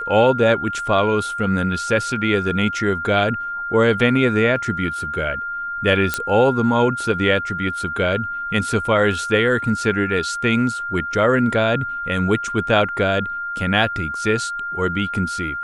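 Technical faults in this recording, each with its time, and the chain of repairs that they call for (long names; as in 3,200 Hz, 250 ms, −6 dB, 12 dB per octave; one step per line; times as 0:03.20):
whistle 1,400 Hz −24 dBFS
0:06.14: click −4 dBFS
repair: click removal
notch filter 1,400 Hz, Q 30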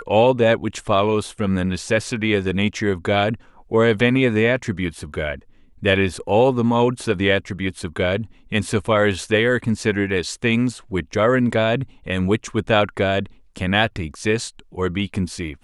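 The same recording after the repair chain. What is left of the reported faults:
none of them is left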